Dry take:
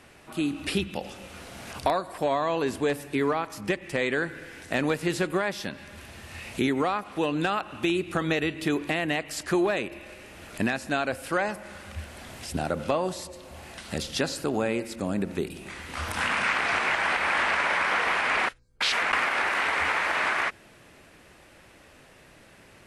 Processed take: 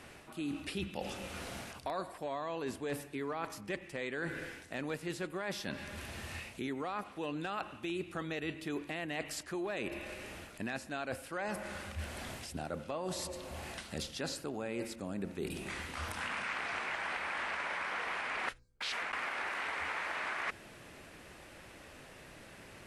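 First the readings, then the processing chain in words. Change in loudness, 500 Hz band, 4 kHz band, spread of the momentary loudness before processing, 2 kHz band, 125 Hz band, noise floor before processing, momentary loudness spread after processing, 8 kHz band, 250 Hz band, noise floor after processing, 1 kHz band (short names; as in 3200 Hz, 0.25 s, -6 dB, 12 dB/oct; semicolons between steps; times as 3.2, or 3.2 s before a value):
-12.0 dB, -11.5 dB, -10.5 dB, 17 LU, -11.5 dB, -9.5 dB, -54 dBFS, 9 LU, -8.0 dB, -11.5 dB, -54 dBFS, -12.0 dB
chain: reverse; compressor 6:1, threshold -36 dBFS, peak gain reduction 16.5 dB; reverse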